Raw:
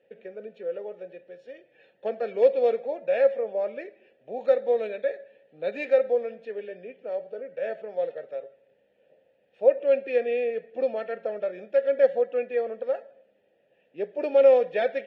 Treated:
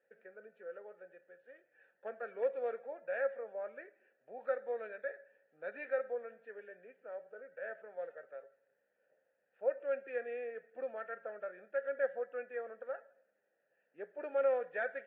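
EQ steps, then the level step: band-pass 1500 Hz, Q 4.8; air absorption 110 m; tilt -3.5 dB/oct; +4.0 dB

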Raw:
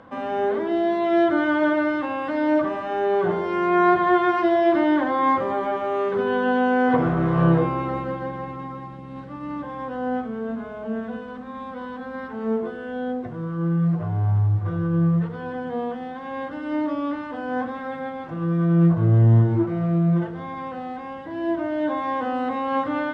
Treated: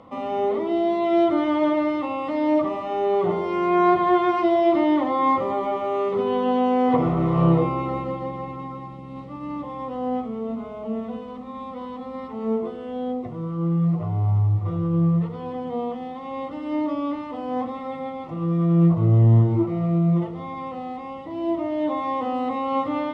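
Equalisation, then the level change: Butterworth band-stop 1600 Hz, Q 3; 0.0 dB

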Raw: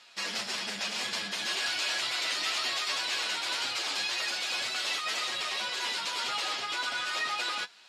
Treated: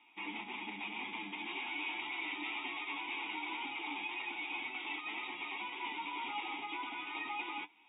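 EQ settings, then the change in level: vowel filter u; brick-wall FIR low-pass 3800 Hz; +9.0 dB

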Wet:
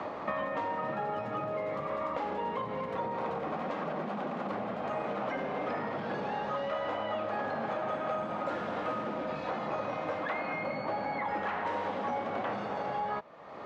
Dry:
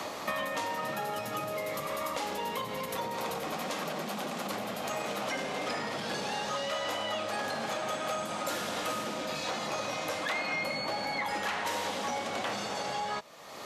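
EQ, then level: LPF 1500 Hz 12 dB/oct; +1.5 dB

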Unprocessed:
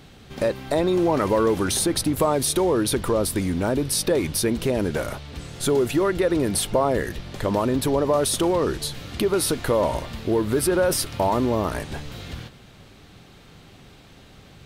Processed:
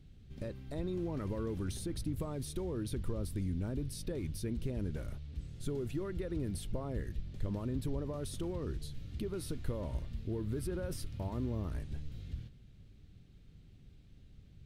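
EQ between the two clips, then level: dynamic EQ 1100 Hz, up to +5 dB, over -34 dBFS, Q 1.1; passive tone stack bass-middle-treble 10-0-1; high shelf 3800 Hz -7.5 dB; +3.5 dB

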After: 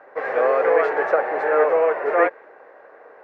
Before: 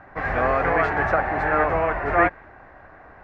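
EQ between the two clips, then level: resonant high-pass 470 Hz, resonance Q 4.9; bell 710 Hz -4.5 dB 0.21 oct; -3.0 dB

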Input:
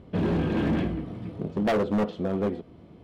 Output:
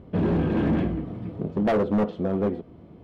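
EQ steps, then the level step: high shelf 2500 Hz -10 dB; +2.5 dB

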